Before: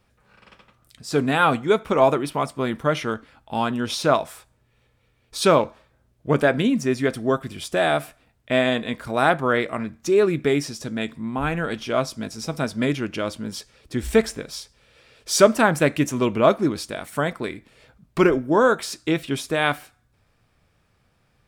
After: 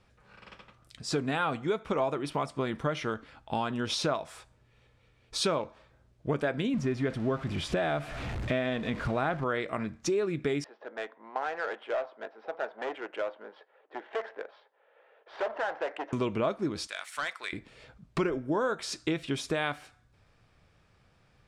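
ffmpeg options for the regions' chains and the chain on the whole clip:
-filter_complex "[0:a]asettb=1/sr,asplit=3[a][b][c];[a]atrim=end=6.744[d];[b]atrim=start=6.74:end=9.44,asetpts=PTS-STARTPTS,afade=t=in:d=0.004:c=qsin,afade=t=out:st=2.696:d=0.004:c=qsin,aeval=exprs='val(0)+0.5*0.0266*sgn(val(0))':c=same,bass=f=250:g=5,treble=f=4k:g=-10[e];[c]atrim=start=9.436[f];[d][e]acrossfade=d=0.004:c1=hsin:c2=qsin[g];[g][f]acrossfade=d=0.004:c1=qsin:c2=hsin,asettb=1/sr,asplit=3[h][i][j];[h]atrim=end=10.644[k];[i]atrim=start=10.64:end=16.13,asetpts=PTS-STARTPTS,afade=t=in:d=0.004:c=qsin,afade=t=out:st=5.486:d=0.004:c=qsin,volume=21.5dB,asoftclip=hard,volume=-21.5dB,highpass=f=490:w=0.5412,highpass=f=490:w=1.3066,equalizer=f=810:t=q:w=4:g=4,equalizer=f=1.2k:t=q:w=4:g=-4,equalizer=f=2.4k:t=q:w=4:g=-9,lowpass=f=2.8k:w=0.5412,lowpass=f=2.8k:w=1.3066,adynamicsmooth=sensitivity=4.5:basefreq=1.9k[l];[j]atrim=start=16.126[m];[k][l]acrossfade=d=0.004:c1=hsin:c2=qsin[n];[n][m]acrossfade=d=0.004:c1=qsin:c2=hsin,asettb=1/sr,asplit=3[o][p][q];[o]atrim=end=16.874[r];[p]atrim=start=16.87:end=17.53,asetpts=PTS-STARTPTS,afade=t=in:d=0.004:c=qsin,afade=t=out:st=0.656:d=0.004:c=qsin,highpass=1.4k,volume=25dB,asoftclip=hard,volume=-25dB[s];[q]atrim=start=17.526[t];[r][s]acrossfade=d=0.004:c1=hsin:c2=qsin[u];[u][t]acrossfade=d=0.004:c1=qsin:c2=hsin,lowpass=7.4k,equalizer=f=240:t=o:w=0.23:g=-3.5,acompressor=threshold=-28dB:ratio=4"

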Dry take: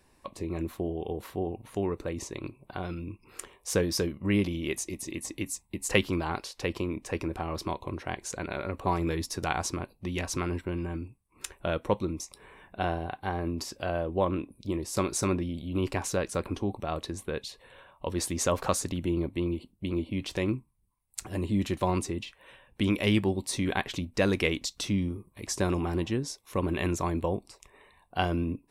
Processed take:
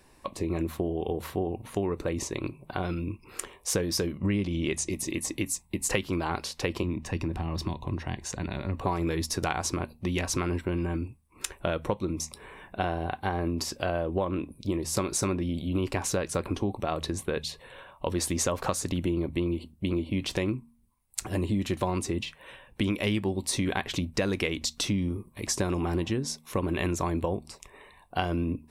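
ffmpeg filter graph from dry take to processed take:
-filter_complex "[0:a]asettb=1/sr,asplit=3[a][b][c];[a]atrim=end=4.184[d];[b]atrim=start=4.18:end=4.92,asetpts=PTS-STARTPTS,afade=t=in:d=0.004:c=qsin,afade=t=out:st=0.736:d=0.004:c=qsin,lowpass=f=9.3k:w=0.5412,lowpass=f=9.3k:w=1.3066,bass=f=250:g=4,treble=f=4k:g=1[e];[c]atrim=start=4.916[f];[d][e]acrossfade=d=0.004:c1=hsin:c2=qsin[g];[g][f]acrossfade=d=0.004:c1=qsin:c2=hsin,asettb=1/sr,asplit=3[h][i][j];[h]atrim=end=6.834[k];[i]atrim=start=6.83:end=8.81,asetpts=PTS-STARTPTS,afade=t=in:d=0.004:c=qsin,afade=t=out:st=1.976:d=0.004:c=qsin,equalizer=f=12k:t=o:w=1.6:g=-8.5,aecho=1:1:1.1:0.36,atrim=end_sample=87318,acrossover=split=340|3000[l][m][n];[m]acompressor=threshold=-47dB:ratio=2.5:attack=3.2:release=140:knee=2.83:detection=peak[o];[l][o][n]amix=inputs=3:normalize=0[p];[j]atrim=start=8.806[q];[k][p]acrossfade=d=0.004:c1=hsin:c2=qsin[r];[r][q]acrossfade=d=0.004:c1=qsin:c2=hsin,bandreject=f=77.9:t=h:w=4,bandreject=f=155.8:t=h:w=4,bandreject=f=233.7:t=h:w=4,acompressor=threshold=-30dB:ratio=6,volume=5.5dB"

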